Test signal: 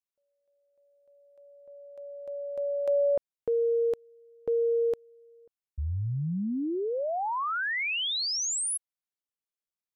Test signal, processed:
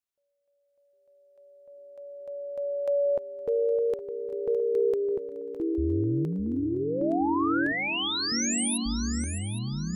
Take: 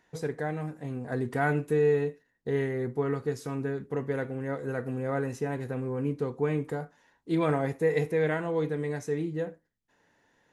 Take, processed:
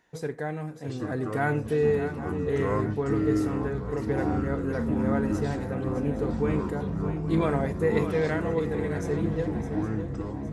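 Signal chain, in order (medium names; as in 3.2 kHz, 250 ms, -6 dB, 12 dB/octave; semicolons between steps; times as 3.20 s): shuffle delay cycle 814 ms, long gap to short 3:1, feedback 40%, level -10.5 dB; ever faster or slower copies 683 ms, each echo -6 st, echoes 3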